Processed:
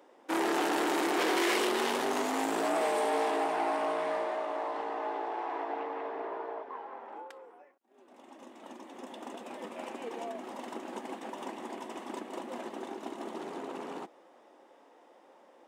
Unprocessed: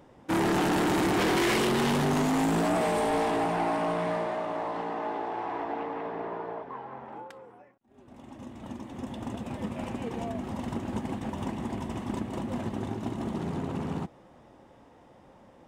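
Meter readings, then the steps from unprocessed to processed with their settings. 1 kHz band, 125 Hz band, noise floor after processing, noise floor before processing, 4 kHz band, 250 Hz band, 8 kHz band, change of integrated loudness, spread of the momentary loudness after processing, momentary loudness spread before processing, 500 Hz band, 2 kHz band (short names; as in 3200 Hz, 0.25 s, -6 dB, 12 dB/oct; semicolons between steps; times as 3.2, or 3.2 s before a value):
-2.0 dB, under -25 dB, -60 dBFS, -56 dBFS, -2.0 dB, -8.0 dB, -2.0 dB, -3.5 dB, 16 LU, 16 LU, -2.5 dB, -2.0 dB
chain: HPF 320 Hz 24 dB/oct; gain -2 dB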